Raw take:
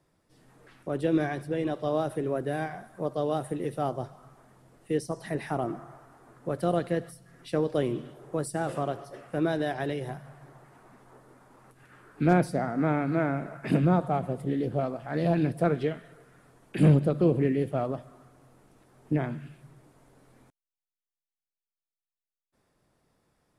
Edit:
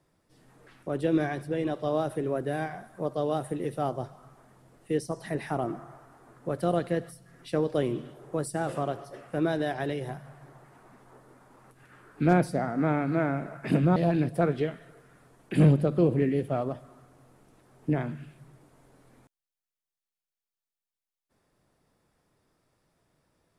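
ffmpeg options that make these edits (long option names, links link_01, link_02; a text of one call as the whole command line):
ffmpeg -i in.wav -filter_complex "[0:a]asplit=2[link_01][link_02];[link_01]atrim=end=13.962[link_03];[link_02]atrim=start=15.188[link_04];[link_03][link_04]acrossfade=duration=0.004:curve1=hsin:curve2=hsin" out.wav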